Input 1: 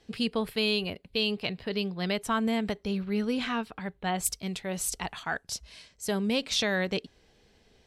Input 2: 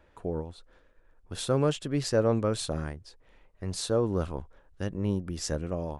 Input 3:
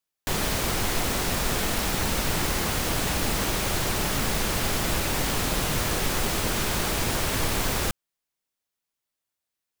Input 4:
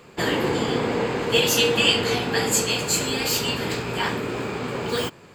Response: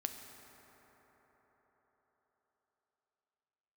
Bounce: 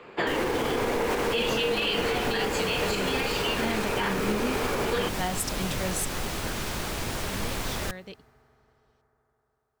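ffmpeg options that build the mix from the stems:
-filter_complex "[0:a]adelay=1150,volume=1dB[link_01];[1:a]volume=-11.5dB,asplit=2[link_02][link_03];[2:a]highshelf=frequency=7500:gain=-5,volume=-6dB,asplit=2[link_04][link_05];[link_05]volume=-16dB[link_06];[3:a]acrossover=split=270 3600:gain=0.251 1 0.0891[link_07][link_08][link_09];[link_07][link_08][link_09]amix=inputs=3:normalize=0,volume=3dB[link_10];[link_03]apad=whole_len=397472[link_11];[link_01][link_11]sidechaingate=range=-14dB:threshold=-59dB:ratio=16:detection=peak[link_12];[4:a]atrim=start_sample=2205[link_13];[link_06][link_13]afir=irnorm=-1:irlink=0[link_14];[link_12][link_02][link_04][link_10][link_14]amix=inputs=5:normalize=0,alimiter=limit=-17.5dB:level=0:latency=1:release=86"

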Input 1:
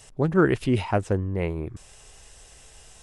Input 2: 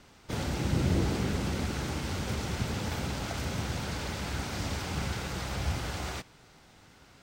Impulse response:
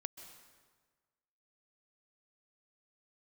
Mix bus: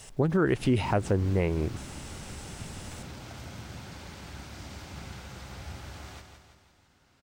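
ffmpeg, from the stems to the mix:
-filter_complex "[0:a]acrusher=bits=10:mix=0:aa=0.000001,volume=2dB,asplit=2[link_01][link_02];[1:a]bandreject=frequency=460:width=12,volume=-10dB,asplit=2[link_03][link_04];[link_04]volume=-7dB[link_05];[link_02]apad=whole_len=318405[link_06];[link_03][link_06]sidechaincompress=threshold=-25dB:ratio=8:attack=16:release=108[link_07];[link_05]aecho=0:1:167|334|501|668|835|1002|1169|1336:1|0.52|0.27|0.141|0.0731|0.038|0.0198|0.0103[link_08];[link_01][link_07][link_08]amix=inputs=3:normalize=0,alimiter=limit=-15dB:level=0:latency=1:release=147"

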